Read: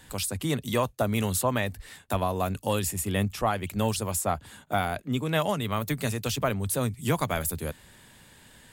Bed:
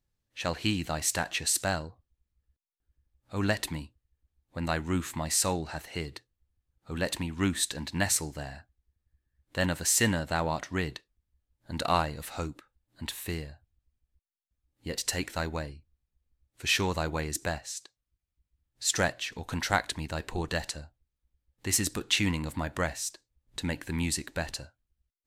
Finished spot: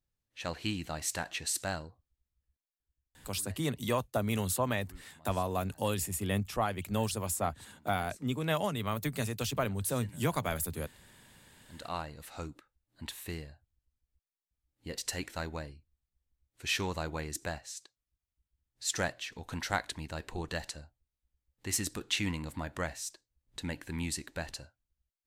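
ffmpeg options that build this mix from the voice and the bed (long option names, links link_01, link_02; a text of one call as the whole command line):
ffmpeg -i stem1.wav -i stem2.wav -filter_complex "[0:a]adelay=3150,volume=-5dB[link_01];[1:a]volume=16dB,afade=type=out:start_time=2.45:duration=0.92:silence=0.0841395,afade=type=in:start_time=11.45:duration=1.12:silence=0.0794328[link_02];[link_01][link_02]amix=inputs=2:normalize=0" out.wav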